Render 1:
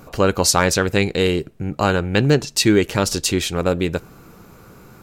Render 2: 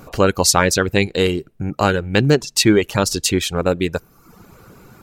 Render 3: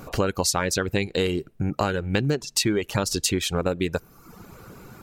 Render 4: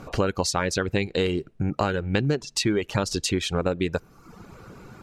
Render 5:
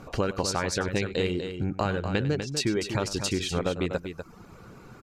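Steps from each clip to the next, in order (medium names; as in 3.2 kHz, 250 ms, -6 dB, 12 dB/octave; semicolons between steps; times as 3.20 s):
reverb removal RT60 0.77 s; trim +2 dB
compression 6:1, threshold -20 dBFS, peak gain reduction 11.5 dB
distance through air 55 m
multi-tap echo 98/246 ms -15.5/-8 dB; trim -3.5 dB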